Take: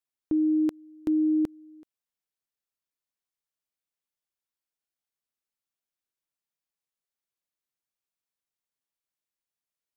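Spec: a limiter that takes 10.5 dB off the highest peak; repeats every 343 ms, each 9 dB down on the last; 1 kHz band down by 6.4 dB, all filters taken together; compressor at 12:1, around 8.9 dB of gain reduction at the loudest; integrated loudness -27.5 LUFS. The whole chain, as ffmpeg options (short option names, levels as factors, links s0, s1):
-af "equalizer=f=1000:t=o:g=-9,acompressor=threshold=0.0282:ratio=12,alimiter=level_in=2.37:limit=0.0631:level=0:latency=1,volume=0.422,aecho=1:1:343|686|1029|1372:0.355|0.124|0.0435|0.0152,volume=3.76"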